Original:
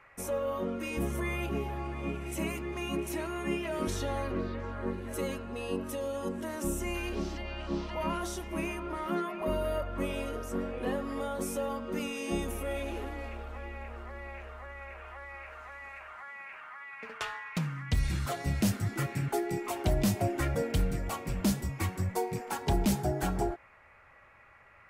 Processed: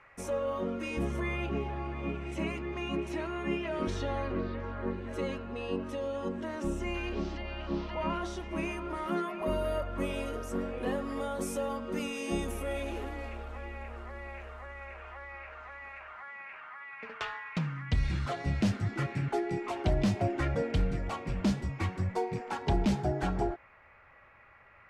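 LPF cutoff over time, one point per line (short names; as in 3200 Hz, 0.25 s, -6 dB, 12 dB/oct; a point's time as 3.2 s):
0.72 s 7200 Hz
1.48 s 4300 Hz
8.36 s 4300 Hz
8.95 s 11000 Hz
14.54 s 11000 Hz
15.5 s 4300 Hz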